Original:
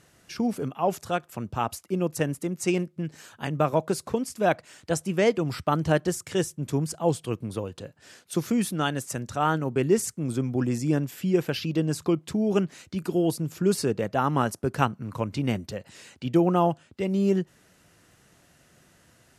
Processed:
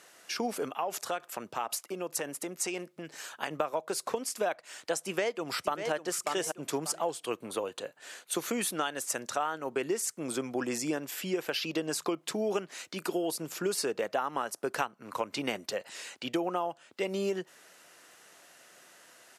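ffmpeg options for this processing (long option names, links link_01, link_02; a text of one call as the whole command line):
ffmpeg -i in.wav -filter_complex "[0:a]asettb=1/sr,asplit=3[link_01][link_02][link_03];[link_01]atrim=end=0.764[link_04];[link_02]atrim=start=0.76:end=3.51,asetpts=PTS-STARTPTS,afade=type=in:duration=0.004:curve=qsin,afade=type=out:start_time=2.746:duration=0.004:curve=qsin,acompressor=threshold=-29dB:ratio=6:attack=3.2:release=140:knee=1:detection=peak[link_05];[link_03]atrim=start=3.506[link_06];[link_04][link_05]acrossfade=duration=0.004:curve1=hsin:curve2=qsin[link_07];[link_07][link_06]acrossfade=duration=0.004:curve1=qsin:curve2=hsin,asplit=2[link_08][link_09];[link_09]afade=type=in:start_time=5.01:duration=0.01,afade=type=out:start_time=5.92:duration=0.01,aecho=0:1:590|1180|1770:0.334965|0.0669931|0.0133986[link_10];[link_08][link_10]amix=inputs=2:normalize=0,asettb=1/sr,asplit=3[link_11][link_12][link_13];[link_11]atrim=end=7.274[link_14];[link_12]atrim=start=7.27:end=8.68,asetpts=PTS-STARTPTS,afade=type=in:duration=0.004:curve=qsin,afade=type=out:start_time=1.406:duration=0.004:curve=qsin,equalizer=frequency=5200:width=6.8:gain=-9[link_15];[link_13]atrim=start=8.676[link_16];[link_14][link_15]acrossfade=duration=0.004:curve1=hsin:curve2=qsin[link_17];[link_17][link_16]acrossfade=duration=0.004:curve1=qsin:curve2=hsin,highpass=510,acompressor=threshold=-32dB:ratio=16,volume=5dB" out.wav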